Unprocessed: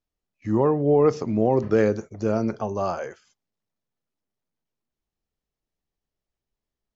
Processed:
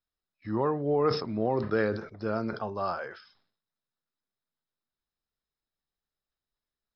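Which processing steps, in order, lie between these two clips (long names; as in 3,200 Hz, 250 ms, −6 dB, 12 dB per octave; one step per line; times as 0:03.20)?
Chebyshev low-pass with heavy ripple 5,300 Hz, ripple 9 dB
high-shelf EQ 4,200 Hz +8 dB
level that may fall only so fast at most 97 dB per second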